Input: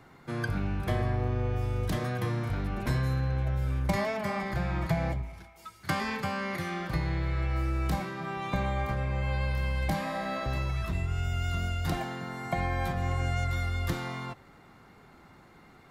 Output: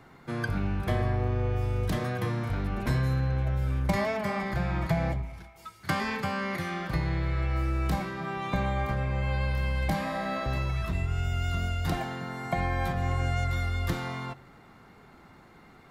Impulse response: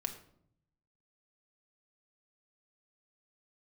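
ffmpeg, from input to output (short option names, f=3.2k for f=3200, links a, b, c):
-filter_complex "[0:a]asplit=2[a][b];[1:a]atrim=start_sample=2205,lowpass=5.4k[c];[b][c]afir=irnorm=-1:irlink=0,volume=-14dB[d];[a][d]amix=inputs=2:normalize=0"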